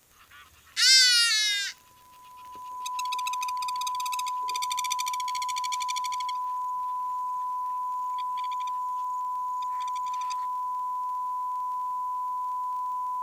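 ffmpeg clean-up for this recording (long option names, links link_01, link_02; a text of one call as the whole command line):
ffmpeg -i in.wav -af "adeclick=threshold=4,bandreject=frequency=1000:width=30" out.wav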